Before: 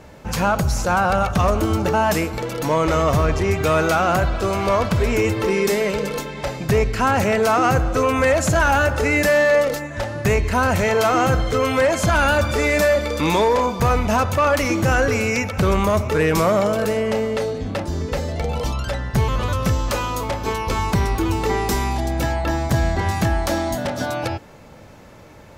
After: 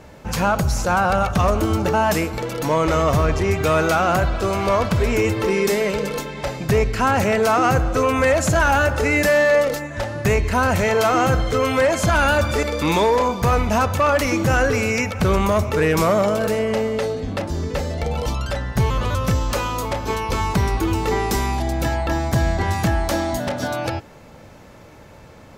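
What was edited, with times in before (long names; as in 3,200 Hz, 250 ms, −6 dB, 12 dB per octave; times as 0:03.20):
0:12.63–0:13.01: remove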